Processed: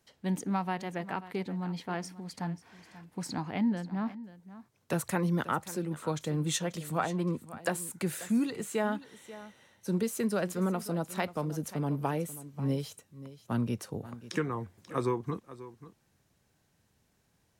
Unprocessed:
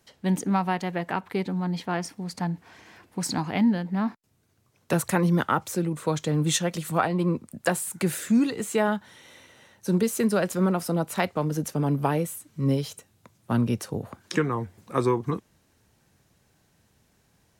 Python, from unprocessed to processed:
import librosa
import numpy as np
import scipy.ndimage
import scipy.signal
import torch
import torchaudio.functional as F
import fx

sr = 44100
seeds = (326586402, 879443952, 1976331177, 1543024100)

y = fx.high_shelf(x, sr, hz=4000.0, db=-6.0, at=(3.22, 4.06))
y = y + 10.0 ** (-16.0 / 20.0) * np.pad(y, (int(537 * sr / 1000.0), 0))[:len(y)]
y = y * 10.0 ** (-7.0 / 20.0)